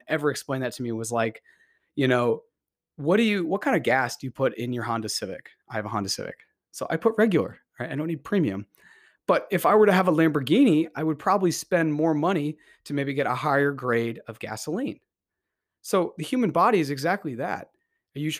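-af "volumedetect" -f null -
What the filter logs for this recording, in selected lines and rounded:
mean_volume: -25.2 dB
max_volume: -8.1 dB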